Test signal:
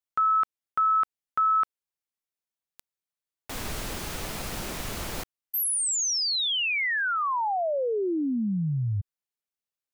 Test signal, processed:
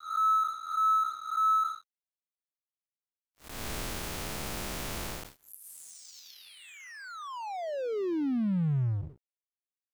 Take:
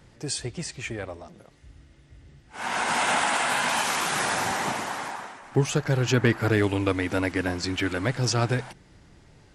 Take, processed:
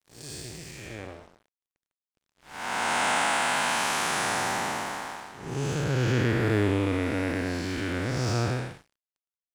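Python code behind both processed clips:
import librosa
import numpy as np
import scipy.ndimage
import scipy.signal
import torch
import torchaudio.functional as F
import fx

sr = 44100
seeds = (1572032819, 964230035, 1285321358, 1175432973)

y = fx.spec_blur(x, sr, span_ms=276.0)
y = np.sign(y) * np.maximum(np.abs(y) - 10.0 ** (-45.5 / 20.0), 0.0)
y = F.gain(torch.from_numpy(y), 1.5).numpy()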